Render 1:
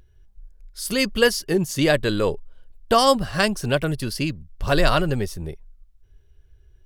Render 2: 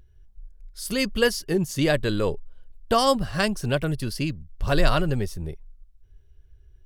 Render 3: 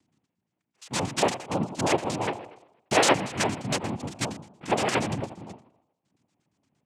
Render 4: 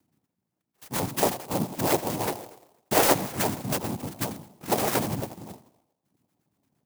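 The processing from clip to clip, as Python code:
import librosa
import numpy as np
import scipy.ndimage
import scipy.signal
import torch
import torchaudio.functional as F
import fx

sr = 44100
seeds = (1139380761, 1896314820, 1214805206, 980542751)

y1 = fx.low_shelf(x, sr, hz=190.0, db=5.0)
y1 = y1 * librosa.db_to_amplitude(-4.0)
y2 = fx.echo_tape(y1, sr, ms=83, feedback_pct=56, wet_db=-11, lp_hz=2200.0, drive_db=3.0, wow_cents=22)
y2 = fx.filter_lfo_lowpass(y2, sr, shape='square', hz=8.6, low_hz=860.0, high_hz=3100.0, q=5.6)
y2 = fx.noise_vocoder(y2, sr, seeds[0], bands=4)
y2 = y2 * librosa.db_to_amplitude(-5.5)
y3 = fx.clock_jitter(y2, sr, seeds[1], jitter_ms=0.092)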